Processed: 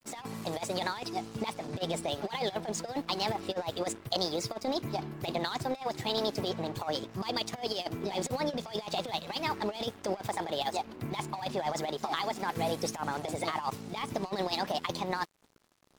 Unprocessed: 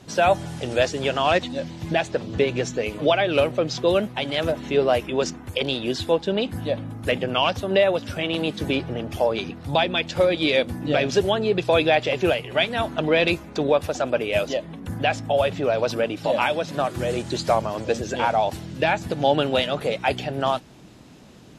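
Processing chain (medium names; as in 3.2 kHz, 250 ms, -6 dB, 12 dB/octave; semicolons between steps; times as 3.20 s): compressor with a negative ratio -23 dBFS, ratio -0.5; speed mistake 33 rpm record played at 45 rpm; crossover distortion -40 dBFS; trim -7.5 dB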